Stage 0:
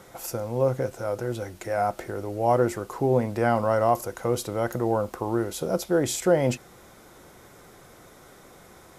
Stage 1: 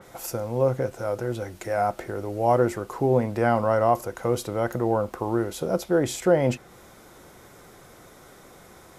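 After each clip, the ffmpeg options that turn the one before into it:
ffmpeg -i in.wav -af "adynamicequalizer=threshold=0.00562:dfrequency=3700:dqfactor=0.7:tfrequency=3700:tqfactor=0.7:attack=5:release=100:ratio=0.375:range=3:mode=cutabove:tftype=highshelf,volume=1dB" out.wav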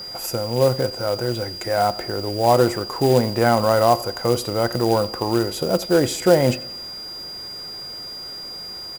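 ffmpeg -i in.wav -af "aecho=1:1:88|176|264|352:0.0944|0.0491|0.0255|0.0133,aeval=exprs='val(0)+0.0158*sin(2*PI*4800*n/s)':channel_layout=same,acrusher=bits=4:mode=log:mix=0:aa=0.000001,volume=4.5dB" out.wav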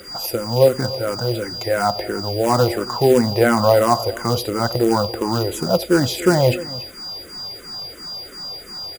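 ffmpeg -i in.wav -filter_complex "[0:a]aecho=1:1:283:0.133,asplit=2[link_01][link_02];[link_02]afreqshift=-2.9[link_03];[link_01][link_03]amix=inputs=2:normalize=1,volume=5dB" out.wav

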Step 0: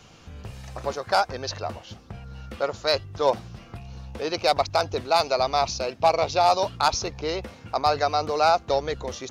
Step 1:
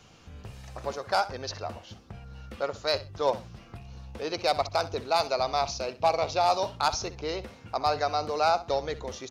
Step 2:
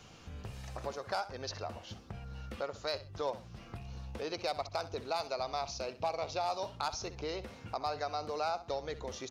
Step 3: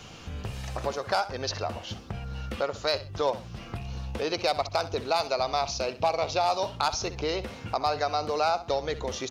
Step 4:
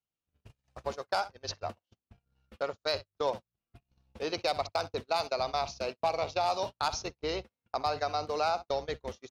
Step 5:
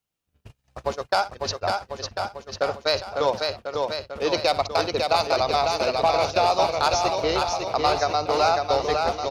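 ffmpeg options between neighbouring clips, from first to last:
ffmpeg -i in.wav -af "aecho=1:1:64|128:0.158|0.0349,volume=-4.5dB" out.wav
ffmpeg -i in.wav -af "acompressor=threshold=-40dB:ratio=2" out.wav
ffmpeg -i in.wav -af "equalizer=frequency=3000:width_type=o:width=0.59:gain=2.5,volume=9dB" out.wav
ffmpeg -i in.wav -af "agate=range=-48dB:threshold=-30dB:ratio=16:detection=peak,volume=-4dB" out.wav
ffmpeg -i in.wav -af "aecho=1:1:550|1045|1490|1891|2252:0.631|0.398|0.251|0.158|0.1,volume=8.5dB" out.wav

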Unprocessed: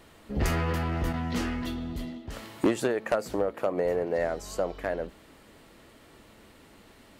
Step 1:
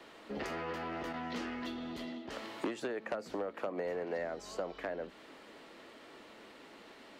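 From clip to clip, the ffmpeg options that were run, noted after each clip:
ffmpeg -i in.wav -filter_complex "[0:a]acrossover=split=230|900[link_01][link_02][link_03];[link_01]acompressor=threshold=-40dB:ratio=4[link_04];[link_02]acompressor=threshold=-42dB:ratio=4[link_05];[link_03]acompressor=threshold=-46dB:ratio=4[link_06];[link_04][link_05][link_06]amix=inputs=3:normalize=0,acrossover=split=230 6100:gain=0.1 1 0.2[link_07][link_08][link_09];[link_07][link_08][link_09]amix=inputs=3:normalize=0,volume=2dB" out.wav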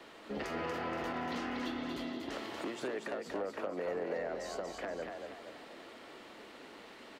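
ffmpeg -i in.wav -filter_complex "[0:a]alimiter=level_in=5.5dB:limit=-24dB:level=0:latency=1:release=187,volume=-5.5dB,asplit=6[link_01][link_02][link_03][link_04][link_05][link_06];[link_02]adelay=237,afreqshift=33,volume=-5dB[link_07];[link_03]adelay=474,afreqshift=66,volume=-12.1dB[link_08];[link_04]adelay=711,afreqshift=99,volume=-19.3dB[link_09];[link_05]adelay=948,afreqshift=132,volume=-26.4dB[link_10];[link_06]adelay=1185,afreqshift=165,volume=-33.5dB[link_11];[link_01][link_07][link_08][link_09][link_10][link_11]amix=inputs=6:normalize=0,volume=1dB" out.wav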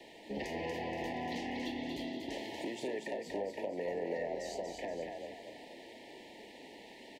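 ffmpeg -i in.wav -filter_complex "[0:a]asuperstop=centerf=1300:order=20:qfactor=1.7,asplit=2[link_01][link_02];[link_02]adelay=35,volume=-12dB[link_03];[link_01][link_03]amix=inputs=2:normalize=0" out.wav

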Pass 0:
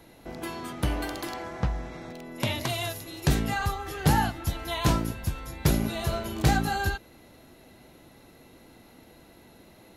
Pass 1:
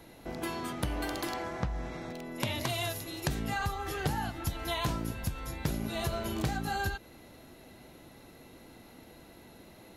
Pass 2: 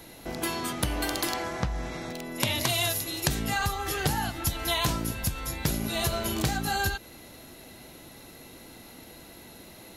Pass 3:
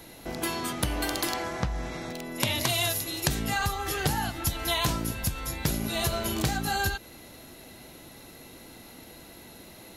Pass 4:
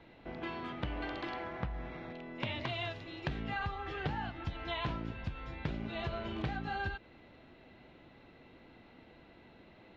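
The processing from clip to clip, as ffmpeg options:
ffmpeg -i in.wav -af "acompressor=threshold=-28dB:ratio=16" out.wav
ffmpeg -i in.wav -af "highshelf=frequency=2900:gain=8.5,volume=3.5dB" out.wav
ffmpeg -i in.wav -af anull out.wav
ffmpeg -i in.wav -af "lowpass=frequency=3100:width=0.5412,lowpass=frequency=3100:width=1.3066,volume=-8.5dB" out.wav

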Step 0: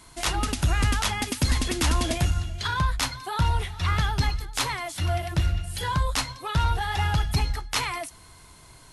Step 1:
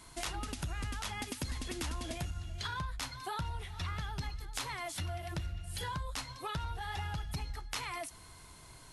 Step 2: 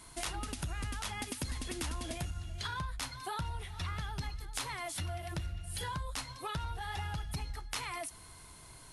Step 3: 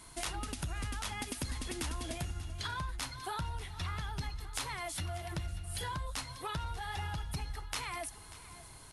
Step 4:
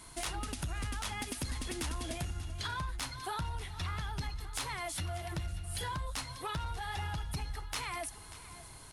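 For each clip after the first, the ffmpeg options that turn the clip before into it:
ffmpeg -i in.wav -af "acompressor=threshold=-32dB:ratio=6,volume=-4dB" out.wav
ffmpeg -i in.wav -af "equalizer=frequency=9600:width=4.6:gain=6" out.wav
ffmpeg -i in.wav -af "aecho=1:1:589|1178|1767|2356|2945:0.141|0.0763|0.0412|0.0222|0.012" out.wav
ffmpeg -i in.wav -af "asoftclip=type=tanh:threshold=-28dB,volume=1.5dB" out.wav

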